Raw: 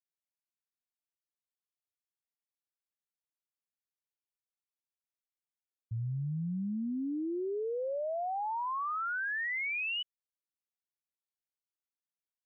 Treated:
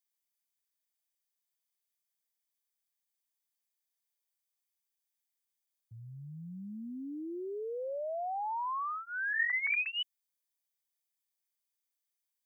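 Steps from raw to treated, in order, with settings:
0:09.33–0:09.87: three sine waves on the formant tracks
spectral tilt +3 dB per octave
notch comb filter 1,400 Hz

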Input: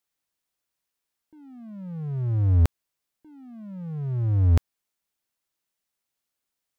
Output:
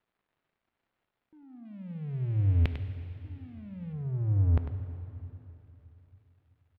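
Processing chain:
0:01.65–0:03.93: high shelf with overshoot 1,700 Hz +12.5 dB, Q 1.5
surface crackle 430 per second −56 dBFS
high-frequency loss of the air 460 metres
single-tap delay 99 ms −9.5 dB
dense smooth reverb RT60 3.5 s, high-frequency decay 0.85×, DRR 9 dB
level −5 dB

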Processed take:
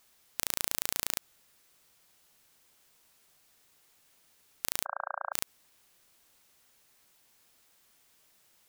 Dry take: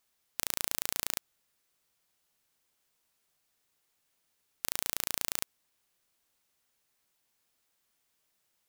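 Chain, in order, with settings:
0:04.85–0:05.33: linear-phase brick-wall band-pass 560–1,600 Hz
boost into a limiter +12 dB
level −1 dB

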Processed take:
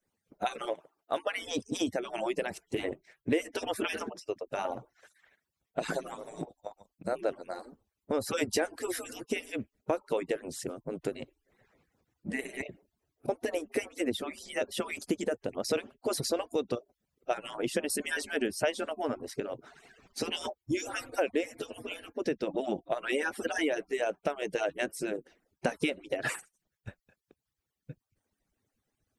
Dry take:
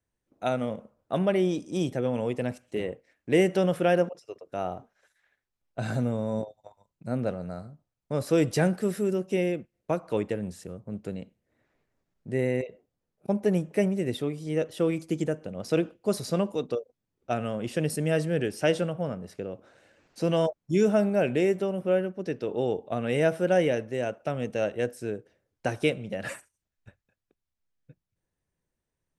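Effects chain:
harmonic-percussive split with one part muted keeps percussive
0:00.73–0:01.35: high-pass filter 1,400 Hz → 570 Hz 6 dB per octave
downward compressor 3 to 1, threshold −37 dBFS, peak gain reduction 14.5 dB
level +8 dB

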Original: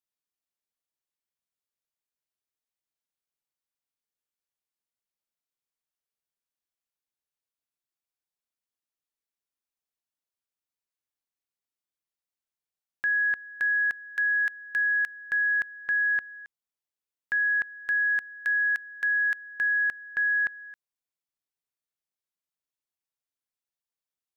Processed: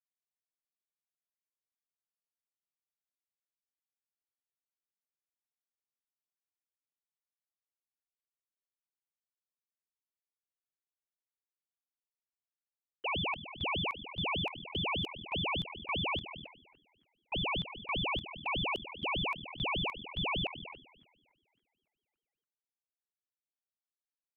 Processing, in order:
echo with shifted repeats 281 ms, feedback 61%, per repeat −41 Hz, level −14 dB
low-pass that shuts in the quiet parts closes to 330 Hz, open at −24.5 dBFS
ring modulator whose carrier an LFO sweeps 1,200 Hz, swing 55%, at 5 Hz
level −6 dB

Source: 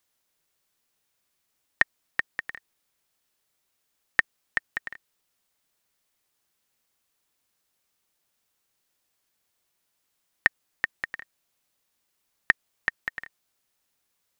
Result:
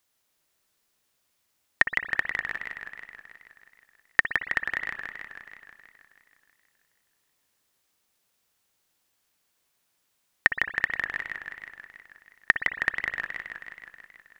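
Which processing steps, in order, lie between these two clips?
spring reverb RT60 1.1 s, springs 58 ms, chirp 75 ms, DRR 9.5 dB
feedback echo with a swinging delay time 160 ms, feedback 68%, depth 141 cents, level −6 dB
level +1 dB

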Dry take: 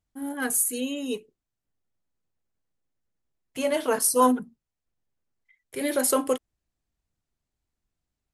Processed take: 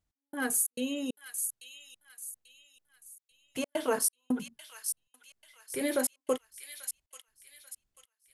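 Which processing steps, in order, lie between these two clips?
in parallel at −2 dB: downward compressor, threshold −32 dBFS, peak gain reduction 16.5 dB
on the sum: gate pattern "x..xxx.xx" 136 BPM −60 dB
delay with a high-pass on its return 839 ms, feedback 35%, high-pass 2,700 Hz, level −5 dB
level −6 dB

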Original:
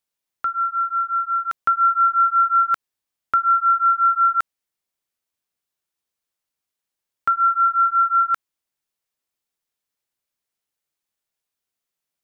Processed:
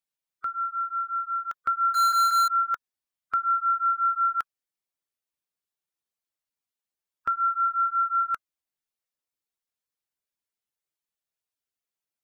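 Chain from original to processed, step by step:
spectral magnitudes quantised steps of 15 dB
0:01.94–0:02.48: power curve on the samples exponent 0.35
level −7 dB

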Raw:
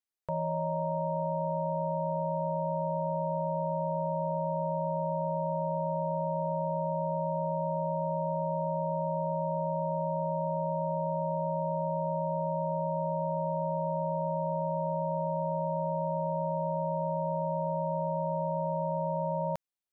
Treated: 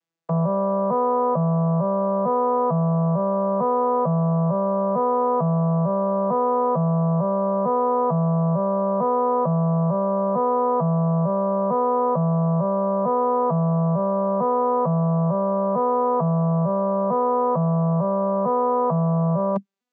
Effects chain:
vocoder with an arpeggio as carrier minor triad, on E3, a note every 450 ms
in parallel at +0.5 dB: compressor whose output falls as the input rises −37 dBFS, ratio −0.5
on the sum: level +8 dB

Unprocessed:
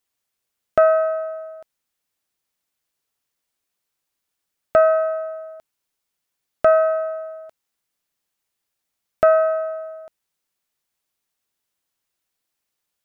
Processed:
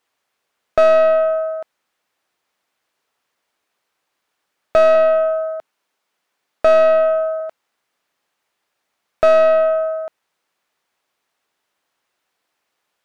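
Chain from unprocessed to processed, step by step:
0:04.95–0:07.40: high-pass filter 130 Hz 24 dB per octave
mid-hump overdrive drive 23 dB, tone 1,200 Hz, clips at −4.5 dBFS

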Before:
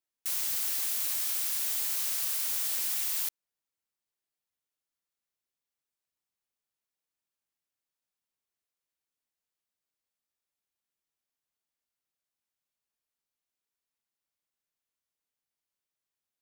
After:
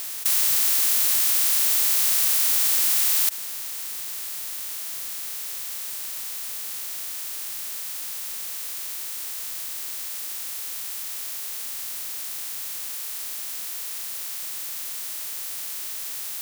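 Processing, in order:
compressor on every frequency bin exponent 0.2
level +5 dB

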